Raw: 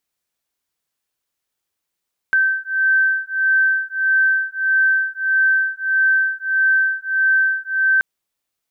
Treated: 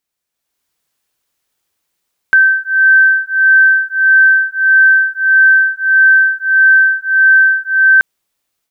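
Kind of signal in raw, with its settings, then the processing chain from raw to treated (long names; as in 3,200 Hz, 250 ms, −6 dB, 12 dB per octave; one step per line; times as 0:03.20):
two tones that beat 1,550 Hz, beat 1.6 Hz, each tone −17.5 dBFS 5.68 s
automatic gain control gain up to 9 dB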